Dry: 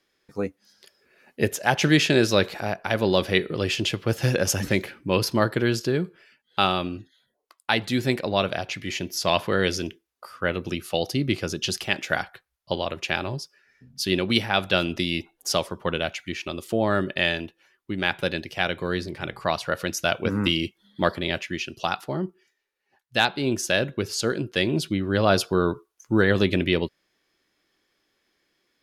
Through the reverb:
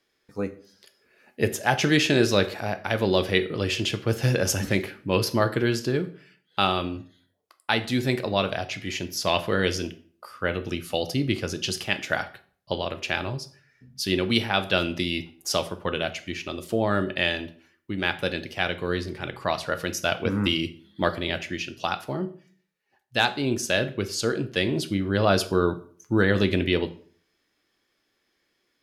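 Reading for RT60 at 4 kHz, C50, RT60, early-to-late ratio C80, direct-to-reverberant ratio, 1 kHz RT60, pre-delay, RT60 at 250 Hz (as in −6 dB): 0.35 s, 16.0 dB, 0.45 s, 20.0 dB, 9.5 dB, 0.45 s, 5 ms, 0.55 s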